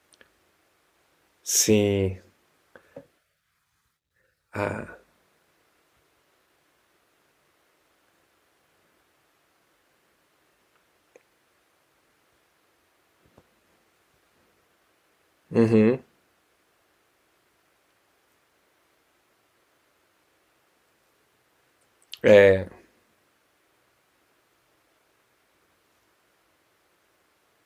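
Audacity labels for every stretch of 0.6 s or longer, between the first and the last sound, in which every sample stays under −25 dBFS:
2.090000	4.550000	silence
4.810000	15.550000	silence
15.960000	22.140000	silence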